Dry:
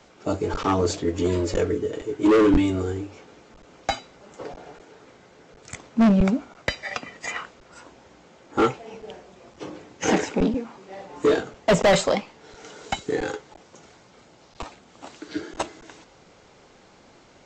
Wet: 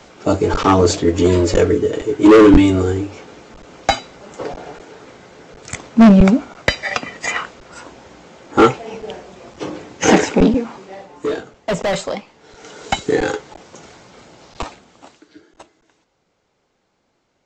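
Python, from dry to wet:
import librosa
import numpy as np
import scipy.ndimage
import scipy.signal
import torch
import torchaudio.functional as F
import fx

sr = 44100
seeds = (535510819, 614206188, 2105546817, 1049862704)

y = fx.gain(x, sr, db=fx.line((10.76, 9.5), (11.2, -2.0), (12.2, -2.0), (12.99, 9.0), (14.63, 9.0), (15.09, -2.0), (15.36, -14.0)))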